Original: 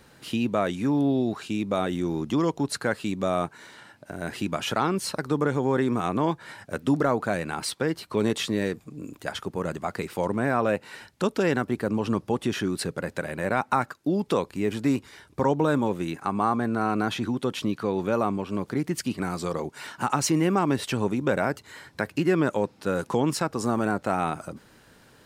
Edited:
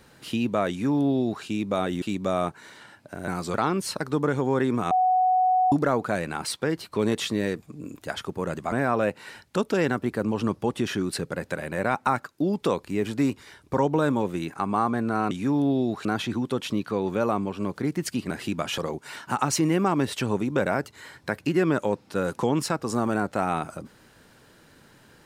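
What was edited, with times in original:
0.7–1.44 copy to 16.97
2.02–2.99 cut
4.25–4.72 swap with 19.23–19.49
6.09–6.9 bleep 741 Hz -17.5 dBFS
9.9–10.38 cut

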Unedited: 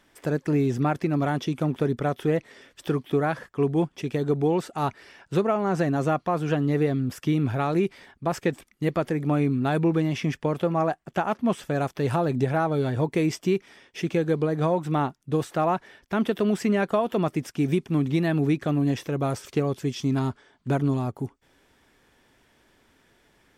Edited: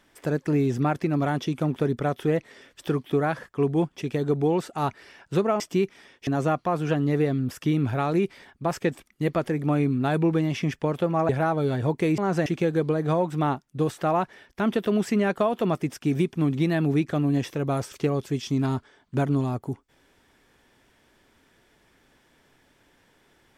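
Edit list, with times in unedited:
5.6–5.88 swap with 13.32–13.99
10.9–12.43 cut

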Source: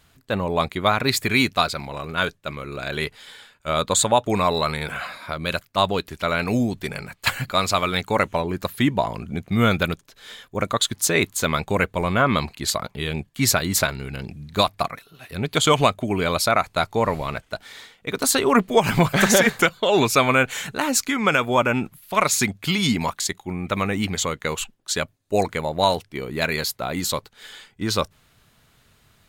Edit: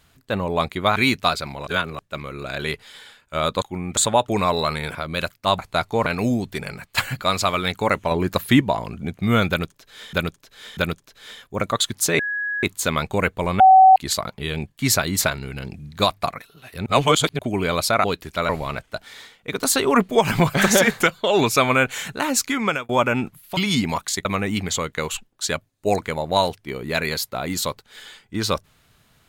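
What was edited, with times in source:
0.96–1.29 cut
2–2.32 reverse
4.93–5.26 cut
5.9–6.35 swap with 16.61–17.08
8.4–8.9 gain +4.5 dB
9.78–10.42 loop, 3 plays
11.2 add tone 1670 Hz -22.5 dBFS 0.44 s
12.17–12.53 bleep 759 Hz -6.5 dBFS
15.43–15.96 reverse
21.22–21.48 fade out
22.16–22.69 cut
23.37–23.72 move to 3.95

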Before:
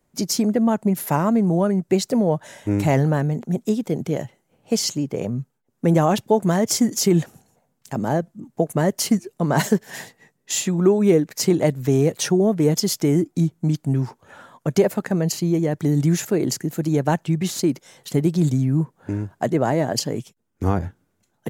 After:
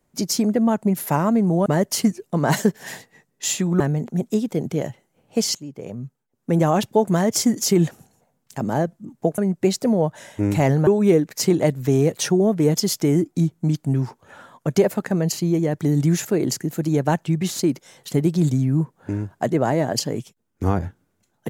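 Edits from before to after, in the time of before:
1.66–3.15 swap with 8.73–10.87
4.9–6.19 fade in, from -13.5 dB

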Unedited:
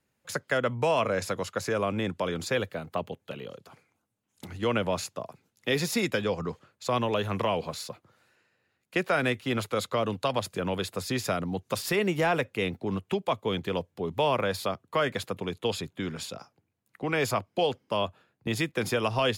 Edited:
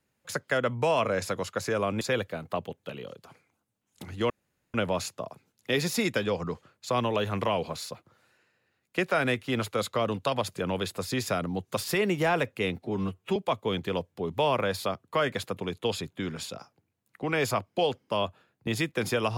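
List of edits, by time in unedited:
2.01–2.43 cut
4.72 insert room tone 0.44 s
12.8–13.16 stretch 1.5×

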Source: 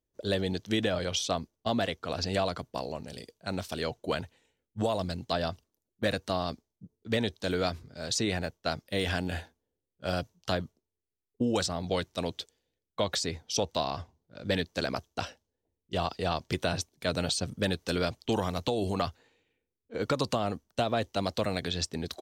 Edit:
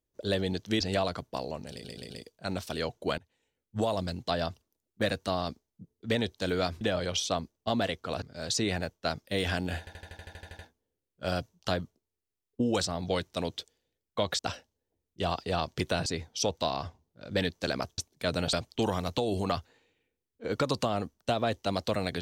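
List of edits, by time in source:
0.8–2.21 move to 7.83
3.12 stutter 0.13 s, 4 plays
4.2–4.79 fade in, from -23.5 dB
9.4 stutter 0.08 s, 11 plays
15.12–16.79 move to 13.2
17.34–18.03 cut

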